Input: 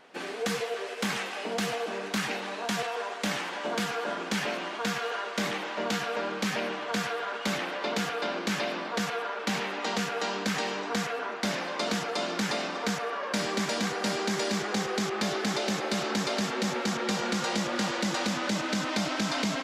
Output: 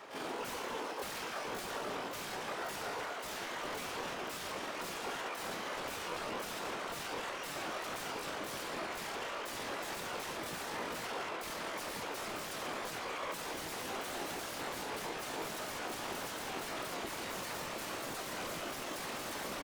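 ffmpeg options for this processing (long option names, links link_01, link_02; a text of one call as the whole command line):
ffmpeg -i in.wav -filter_complex "[0:a]aeval=exprs='0.0251*(abs(mod(val(0)/0.0251+3,4)-2)-1)':channel_layout=same,alimiter=level_in=14dB:limit=-24dB:level=0:latency=1:release=249,volume=-14dB,afftfilt=real='hypot(re,im)*cos(2*PI*random(0))':imag='hypot(re,im)*sin(2*PI*random(1))':win_size=512:overlap=0.75,acrossover=split=210|1200[link_01][link_02][link_03];[link_02]acontrast=74[link_04];[link_01][link_04][link_03]amix=inputs=3:normalize=0,asplit=3[link_05][link_06][link_07];[link_06]asetrate=29433,aresample=44100,atempo=1.49831,volume=-10dB[link_08];[link_07]asetrate=88200,aresample=44100,atempo=0.5,volume=0dB[link_09];[link_05][link_08][link_09]amix=inputs=3:normalize=0,volume=1.5dB" out.wav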